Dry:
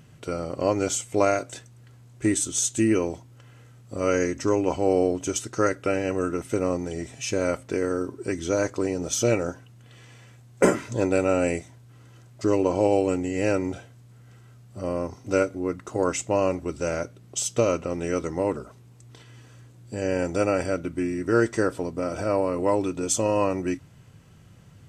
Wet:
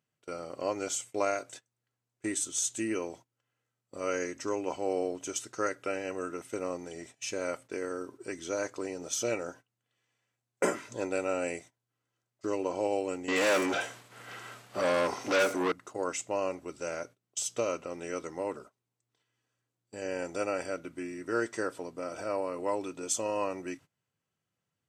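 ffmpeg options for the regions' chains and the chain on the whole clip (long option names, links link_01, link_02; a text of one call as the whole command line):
ffmpeg -i in.wav -filter_complex "[0:a]asettb=1/sr,asplit=3[link_01][link_02][link_03];[link_01]atrim=end=13.284[link_04];[link_02]atrim=start=13.28:end=15.72,asetpts=PTS-STARTPTS,afade=type=in:duration=0.004:curve=qsin,afade=type=out:start_time=2.436:duration=0.004:curve=qsin,asplit=2[link_05][link_06];[link_06]highpass=frequency=720:poles=1,volume=31dB,asoftclip=type=tanh:threshold=-10dB[link_07];[link_05][link_07]amix=inputs=2:normalize=0,lowpass=frequency=4300:poles=1,volume=-6dB,acrossover=split=6000[link_08][link_09];[link_09]adelay=80[link_10];[link_08][link_10]amix=inputs=2:normalize=0,atrim=end_sample=107604[link_11];[link_03]atrim=start=15.716[link_12];[link_04][link_11]acrossfade=duration=0.004:curve1=hsin:curve2=qsin[link_13];[link_13][link_12]acrossfade=duration=0.004:curve1=qsin:curve2=hsin,agate=range=-20dB:threshold=-38dB:ratio=16:detection=peak,highpass=frequency=510:poles=1,volume=-6dB" out.wav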